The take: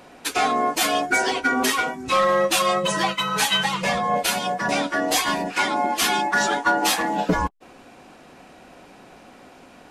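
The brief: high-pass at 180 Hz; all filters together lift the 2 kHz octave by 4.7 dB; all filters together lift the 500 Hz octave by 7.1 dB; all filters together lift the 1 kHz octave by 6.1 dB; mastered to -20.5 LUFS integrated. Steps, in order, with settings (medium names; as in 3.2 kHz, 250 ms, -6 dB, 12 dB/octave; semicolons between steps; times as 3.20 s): high-pass 180 Hz; peaking EQ 500 Hz +7 dB; peaking EQ 1 kHz +4.5 dB; peaking EQ 2 kHz +4 dB; trim -4 dB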